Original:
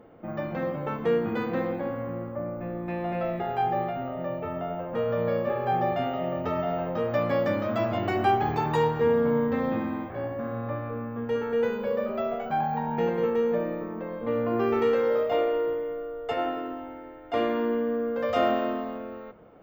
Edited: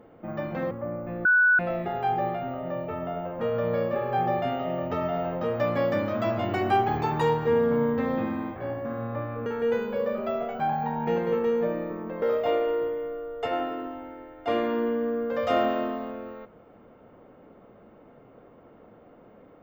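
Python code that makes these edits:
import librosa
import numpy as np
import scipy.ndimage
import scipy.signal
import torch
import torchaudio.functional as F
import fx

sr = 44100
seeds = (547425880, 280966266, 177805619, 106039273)

y = fx.edit(x, sr, fx.cut(start_s=0.71, length_s=1.54),
    fx.bleep(start_s=2.79, length_s=0.34, hz=1480.0, db=-16.0),
    fx.cut(start_s=11.0, length_s=0.37),
    fx.cut(start_s=14.13, length_s=0.95), tone=tone)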